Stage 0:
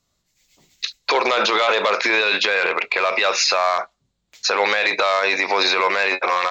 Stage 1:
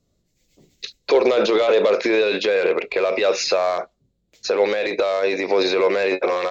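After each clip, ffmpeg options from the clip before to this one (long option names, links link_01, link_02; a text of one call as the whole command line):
ffmpeg -i in.wav -af "lowshelf=frequency=680:width_type=q:width=1.5:gain=11.5,dynaudnorm=framelen=140:gausssize=11:maxgain=11.5dB,volume=-5.5dB" out.wav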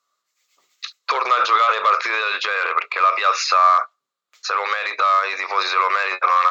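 ffmpeg -i in.wav -af "highpass=frequency=1200:width_type=q:width=8.6" out.wav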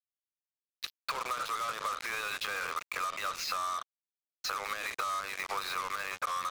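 ffmpeg -i in.wav -af "acompressor=threshold=-25dB:ratio=12,acrusher=bits=4:mix=0:aa=0.5,volume=-6.5dB" out.wav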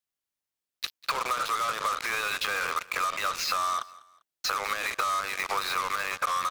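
ffmpeg -i in.wav -af "aecho=1:1:198|396:0.0891|0.0294,volume=6dB" out.wav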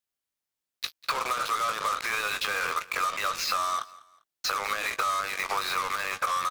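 ffmpeg -i in.wav -filter_complex "[0:a]asplit=2[link_01][link_02];[link_02]adelay=19,volume=-10.5dB[link_03];[link_01][link_03]amix=inputs=2:normalize=0" out.wav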